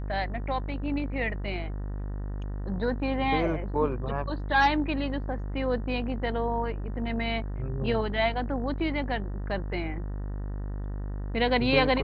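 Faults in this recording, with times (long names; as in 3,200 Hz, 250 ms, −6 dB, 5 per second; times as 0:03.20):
mains buzz 50 Hz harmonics 38 −33 dBFS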